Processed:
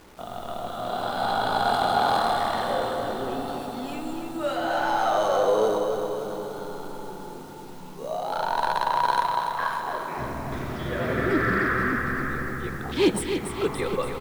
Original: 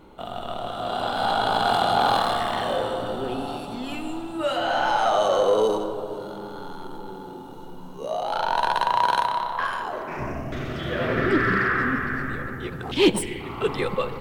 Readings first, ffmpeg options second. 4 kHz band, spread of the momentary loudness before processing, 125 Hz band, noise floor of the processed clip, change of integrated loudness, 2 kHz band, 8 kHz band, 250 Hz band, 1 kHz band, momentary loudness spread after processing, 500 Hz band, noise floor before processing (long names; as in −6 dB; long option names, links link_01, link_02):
−4.5 dB, 16 LU, −1.0 dB, −39 dBFS, −1.5 dB, −2.0 dB, −0.5 dB, −1.5 dB, −1.5 dB, 13 LU, −1.5 dB, −38 dBFS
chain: -filter_complex "[0:a]equalizer=frequency=2900:width=4:gain=-7,acrusher=bits=7:mix=0:aa=0.000001,asplit=2[link_01][link_02];[link_02]aecho=0:1:288|576|864|1152|1440|1728|2016:0.447|0.259|0.15|0.0872|0.0505|0.0293|0.017[link_03];[link_01][link_03]amix=inputs=2:normalize=0,volume=-2.5dB"